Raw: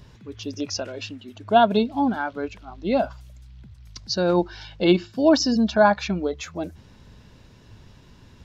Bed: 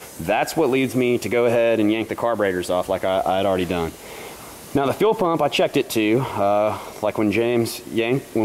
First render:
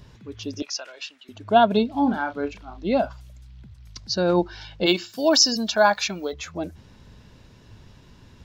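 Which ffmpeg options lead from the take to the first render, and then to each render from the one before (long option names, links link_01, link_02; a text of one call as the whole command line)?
ffmpeg -i in.wav -filter_complex "[0:a]asettb=1/sr,asplit=3[link_01][link_02][link_03];[link_01]atrim=end=0.624[link_04];[link_02]atrim=start=0.62:end=1.29,asetpts=PTS-STARTPTS,afade=type=in:duration=0.004:curve=qsin,afade=type=out:start_time=0.666:duration=0.004:curve=qsin,highpass=1000[link_05];[link_03]atrim=start=1.286[link_06];[link_04][link_05]acrossfade=duration=0.004:curve1=hsin:curve2=qsin[link_07];[link_07][link_06]acrossfade=duration=0.004:curve1=qsin:curve2=hsin,asettb=1/sr,asplit=3[link_08][link_09][link_10];[link_08]atrim=end=1.914[link_11];[link_09]atrim=start=1.91:end=2.85,asetpts=PTS-STARTPTS,afade=type=in:duration=0.004:curve=qsin,afade=type=out:start_time=0.936:duration=0.004:curve=qsin,asplit=2[link_12][link_13];[link_13]adelay=35,volume=-9dB[link_14];[link_12][link_14]amix=inputs=2:normalize=0,atrim=end_sample=41454[link_15];[link_10]atrim=start=2.846[link_16];[link_11][link_15]acrossfade=duration=0.004:curve1=hsin:curve2=qsin[link_17];[link_17][link_16]acrossfade=duration=0.004:curve1=qsin:curve2=hsin,asplit=3[link_18][link_19][link_20];[link_18]afade=type=out:start_time=4.85:duration=0.02[link_21];[link_19]aemphasis=mode=production:type=riaa,afade=type=in:start_time=4.85:duration=0.02,afade=type=out:start_time=6.32:duration=0.02[link_22];[link_20]afade=type=in:start_time=6.32:duration=0.02[link_23];[link_21][link_22][link_23]amix=inputs=3:normalize=0" out.wav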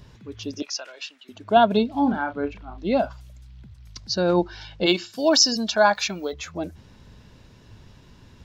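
ffmpeg -i in.wav -filter_complex "[0:a]asettb=1/sr,asplit=3[link_01][link_02][link_03];[link_01]atrim=end=0.514[link_04];[link_02]atrim=start=0.51:end=1.57,asetpts=PTS-STARTPTS,afade=type=in:duration=0.004:curve=qsin,afade=type=out:start_time=1.056:duration=0.004:curve=qsin,highpass=130[link_05];[link_03]atrim=start=1.566[link_06];[link_04][link_05]acrossfade=duration=0.004:curve1=hsin:curve2=qsin[link_07];[link_07][link_06]acrossfade=duration=0.004:curve1=qsin:curve2=hsin,asettb=1/sr,asplit=3[link_08][link_09][link_10];[link_08]atrim=end=2.124[link_11];[link_09]atrim=start=2.12:end=2.78,asetpts=PTS-STARTPTS,afade=type=in:duration=0.004:curve=qsin,afade=type=out:start_time=0.656:duration=0.004:curve=qsin,bass=frequency=250:gain=3,treble=frequency=4000:gain=-12[link_12];[link_10]atrim=start=2.776[link_13];[link_11][link_12]acrossfade=duration=0.004:curve1=hsin:curve2=qsin[link_14];[link_14][link_13]acrossfade=duration=0.004:curve1=qsin:curve2=hsin,asettb=1/sr,asplit=3[link_15][link_16][link_17];[link_15]atrim=end=4.214[link_18];[link_16]atrim=start=4.21:end=5.95,asetpts=PTS-STARTPTS,afade=type=in:duration=0.004:curve=qsin,afade=type=out:start_time=1.736:duration=0.004:curve=qsin,lowpass=11000[link_19];[link_17]atrim=start=5.946[link_20];[link_18][link_19]acrossfade=duration=0.004:curve1=hsin:curve2=qsin[link_21];[link_21][link_20]acrossfade=duration=0.004:curve1=qsin:curve2=hsin" out.wav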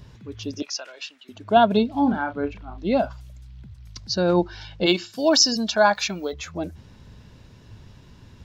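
ffmpeg -i in.wav -af "equalizer=frequency=100:width_type=o:width=1.8:gain=3.5" out.wav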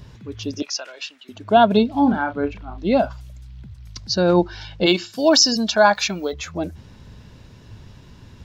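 ffmpeg -i in.wav -af "volume=3.5dB,alimiter=limit=-3dB:level=0:latency=1" out.wav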